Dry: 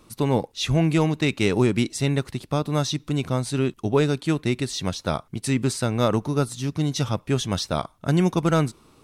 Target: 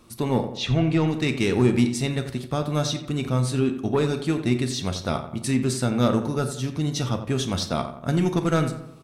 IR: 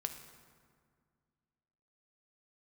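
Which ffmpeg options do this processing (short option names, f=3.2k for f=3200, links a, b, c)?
-filter_complex "[0:a]asettb=1/sr,asplit=3[a][b][c];[a]atrim=end=0.574[d];[b]atrim=start=0.57:end=1.08,asetpts=PTS-STARTPTS,afade=t=in:d=0.004:c=qsin,afade=t=out:st=0.506:d=0.004:c=qsin,lowpass=4.9k[e];[c]atrim=start=1.076[f];[d][e]acrossfade=d=0.004:c1=hsin:c2=qsin[g];[g][f]acrossfade=d=0.004:c1=qsin:c2=hsin,asoftclip=type=tanh:threshold=-12dB,asplit=2[h][i];[i]adelay=87,lowpass=f=2.3k:p=1,volume=-9.5dB,asplit=2[j][k];[k]adelay=87,lowpass=f=2.3k:p=1,volume=0.5,asplit=2[l][m];[m]adelay=87,lowpass=f=2.3k:p=1,volume=0.5,asplit=2[n][o];[o]adelay=87,lowpass=f=2.3k:p=1,volume=0.5,asplit=2[p][q];[q]adelay=87,lowpass=f=2.3k:p=1,volume=0.5,asplit=2[r][s];[s]adelay=87,lowpass=f=2.3k:p=1,volume=0.5[t];[h][j][l][n][p][r][t]amix=inputs=7:normalize=0[u];[1:a]atrim=start_sample=2205,atrim=end_sample=4410,asetrate=70560,aresample=44100[v];[u][v]afir=irnorm=-1:irlink=0,volume=5dB"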